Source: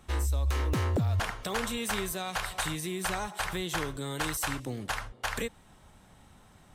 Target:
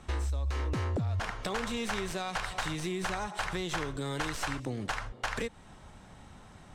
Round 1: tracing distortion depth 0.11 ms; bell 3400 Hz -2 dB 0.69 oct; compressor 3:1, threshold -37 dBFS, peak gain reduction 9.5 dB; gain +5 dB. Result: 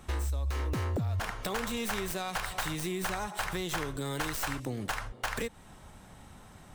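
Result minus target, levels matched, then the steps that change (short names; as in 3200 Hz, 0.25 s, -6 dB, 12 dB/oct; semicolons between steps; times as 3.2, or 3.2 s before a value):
8000 Hz band +3.0 dB
add after tracing distortion: LPF 7400 Hz 12 dB/oct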